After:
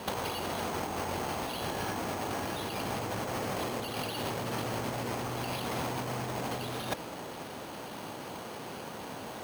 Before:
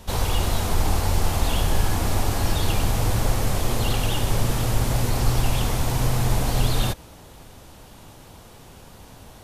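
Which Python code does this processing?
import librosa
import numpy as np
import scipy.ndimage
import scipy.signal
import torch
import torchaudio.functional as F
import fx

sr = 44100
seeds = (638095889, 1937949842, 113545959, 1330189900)

y = scipy.signal.sosfilt(scipy.signal.butter(2, 220.0, 'highpass', fs=sr, output='sos'), x)
y = fx.over_compress(y, sr, threshold_db=-33.0, ratio=-0.5)
y = np.repeat(scipy.signal.resample_poly(y, 1, 6), 6)[:len(y)]
y = y * 10.0 ** (1.5 / 20.0)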